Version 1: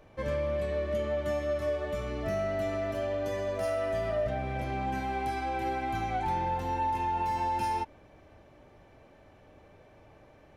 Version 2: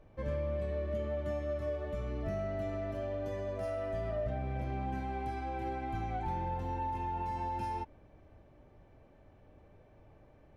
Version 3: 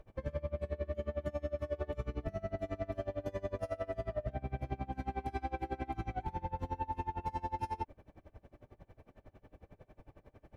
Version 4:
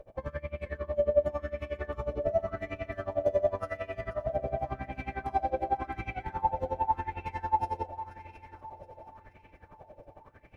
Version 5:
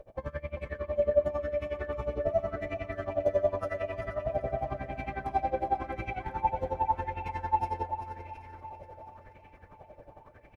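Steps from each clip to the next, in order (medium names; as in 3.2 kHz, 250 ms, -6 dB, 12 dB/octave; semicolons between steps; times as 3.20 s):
tilt EQ -2 dB/octave; trim -7.5 dB
peak limiter -32.5 dBFS, peak gain reduction 8 dB; logarithmic tremolo 11 Hz, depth 26 dB; trim +7 dB
multi-head delay 240 ms, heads second and third, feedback 51%, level -15 dB; sweeping bell 0.9 Hz 540–2500 Hz +16 dB
feedback delay 388 ms, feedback 28%, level -10 dB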